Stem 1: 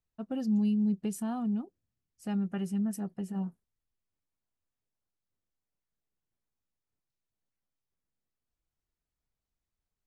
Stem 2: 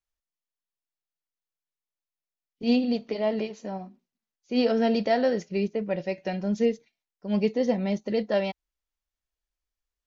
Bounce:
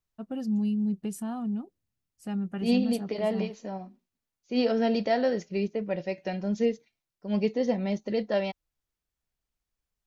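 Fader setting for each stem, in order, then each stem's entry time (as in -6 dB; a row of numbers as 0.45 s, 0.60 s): 0.0 dB, -2.0 dB; 0.00 s, 0.00 s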